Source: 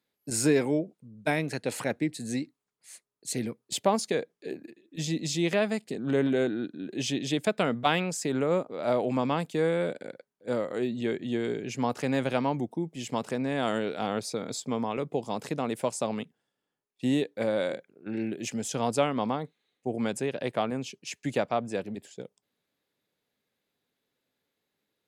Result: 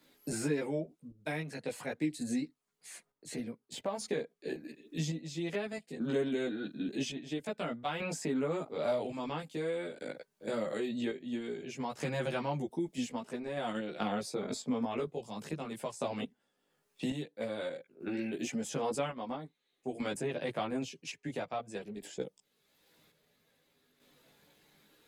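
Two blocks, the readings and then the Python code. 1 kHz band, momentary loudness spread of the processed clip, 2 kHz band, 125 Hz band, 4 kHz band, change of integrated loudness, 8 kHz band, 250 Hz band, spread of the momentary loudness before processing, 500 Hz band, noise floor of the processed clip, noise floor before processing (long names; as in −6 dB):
−8.0 dB, 9 LU, −7.0 dB, −7.0 dB, −7.5 dB, −7.5 dB, −9.0 dB, −6.5 dB, 11 LU, −7.5 dB, −80 dBFS, −84 dBFS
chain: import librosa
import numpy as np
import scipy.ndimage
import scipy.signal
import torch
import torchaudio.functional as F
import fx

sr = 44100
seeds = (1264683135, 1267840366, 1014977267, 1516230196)

p1 = fx.chopper(x, sr, hz=0.5, depth_pct=65, duty_pct=55)
p2 = fx.level_steps(p1, sr, step_db=19)
p3 = p1 + (p2 * librosa.db_to_amplitude(-2.0))
p4 = fx.chorus_voices(p3, sr, voices=6, hz=0.15, base_ms=16, depth_ms=4.0, mix_pct=55)
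p5 = fx.band_squash(p4, sr, depth_pct=70)
y = p5 * librosa.db_to_amplitude(-3.5)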